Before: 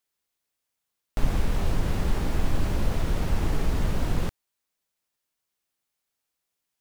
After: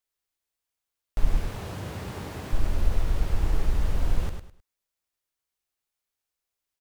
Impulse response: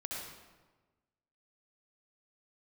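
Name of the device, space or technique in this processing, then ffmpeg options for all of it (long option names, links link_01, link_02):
low shelf boost with a cut just above: -filter_complex "[0:a]asettb=1/sr,asplit=3[link_01][link_02][link_03];[link_01]atrim=end=1.374[link_04];[link_02]atrim=start=1.37:end=2.53,asetpts=PTS-STARTPTS,afade=type=in:duration=0.004:curve=qsin,afade=type=out:start_time=1.156:duration=0.004:curve=qsin,highpass=frequency=92:width=0.5412,highpass=frequency=92:width=1.3066[link_05];[link_03]atrim=start=2.526[link_06];[link_04][link_05]acrossfade=duration=0.004:curve1=hsin:curve2=qsin[link_07];[link_07][link_06]acrossfade=duration=0.004:curve1=qsin:curve2=hsin,lowshelf=frequency=80:gain=7.5,equalizer=frequency=150:width_type=o:width=0.77:gain=-4,equalizer=frequency=240:width_type=o:width=0.64:gain=-3.5,aecho=1:1:103|206|309:0.473|0.123|0.032,volume=-5dB"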